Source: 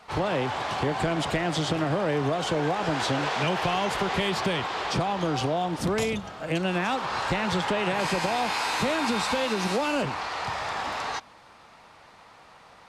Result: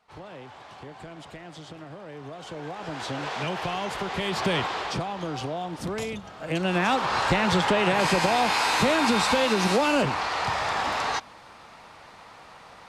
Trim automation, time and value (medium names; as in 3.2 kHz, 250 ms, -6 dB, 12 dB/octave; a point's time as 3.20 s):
2.06 s -16 dB
3.32 s -4 dB
4.14 s -4 dB
4.58 s +3 dB
5.09 s -5 dB
6.20 s -5 dB
6.88 s +4 dB